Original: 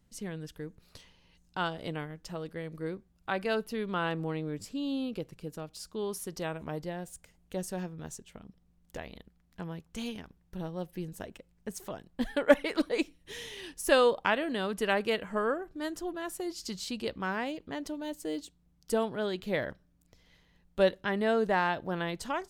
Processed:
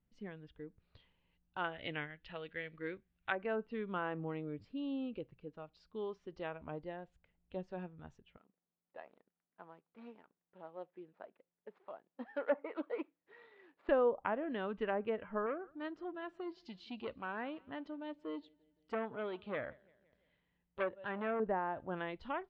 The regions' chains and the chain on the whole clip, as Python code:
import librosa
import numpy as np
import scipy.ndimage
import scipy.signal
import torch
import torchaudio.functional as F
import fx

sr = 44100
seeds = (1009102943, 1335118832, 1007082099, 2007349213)

y = fx.chain(x, sr, fx.block_float(bits=7),
    fx.band_shelf(hz=2600.0, db=10.5, octaves=1.7), at=(1.64, 3.35))
y = fx.chain(y, sr, fx.median_filter(points=15),
    fx.highpass(hz=380.0, slope=12),
    fx.transformer_sat(knee_hz=1600.0), at=(8.37, 13.89))
y = fx.chain(y, sr, fx.highpass(hz=93.0, slope=6),
    fx.echo_feedback(ms=172, feedback_pct=58, wet_db=-22.5),
    fx.transformer_sat(knee_hz=1900.0), at=(15.46, 21.4))
y = fx.noise_reduce_blind(y, sr, reduce_db=7)
y = fx.env_lowpass_down(y, sr, base_hz=1000.0, full_db=-24.0)
y = scipy.signal.sosfilt(scipy.signal.butter(4, 3100.0, 'lowpass', fs=sr, output='sos'), y)
y = F.gain(torch.from_numpy(y), -6.0).numpy()